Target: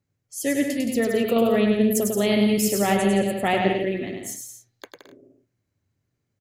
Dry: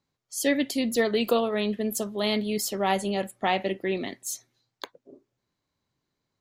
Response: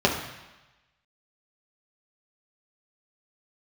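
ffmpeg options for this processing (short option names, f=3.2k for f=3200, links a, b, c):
-filter_complex "[0:a]equalizer=f=100:t=o:w=0.67:g=12,equalizer=f=1k:t=o:w=0.67:g=-9,equalizer=f=4k:t=o:w=0.67:g=-10,asettb=1/sr,asplit=3[a][b][c];[a]atrim=end=1.364[d];[b]atrim=start=1.36:end=3.81,asetpts=PTS-STARTPTS,afade=t=in:d=0.004:c=qsin,afade=t=out:st=2.446:d=0.004:c=qsin,acontrast=33[e];[c]atrim=start=3.806[f];[d][e]acrossfade=d=0.004:c1=hsin:c2=qsin[g];[g][f]acrossfade=d=0.004:c1=qsin:c2=hsin,aecho=1:1:100|170|219|253.3|277.3:0.631|0.398|0.251|0.158|0.1"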